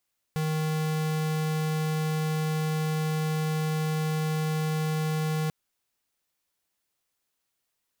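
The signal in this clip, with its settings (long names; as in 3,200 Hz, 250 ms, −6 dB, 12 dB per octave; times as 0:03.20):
tone square 156 Hz −27.5 dBFS 5.14 s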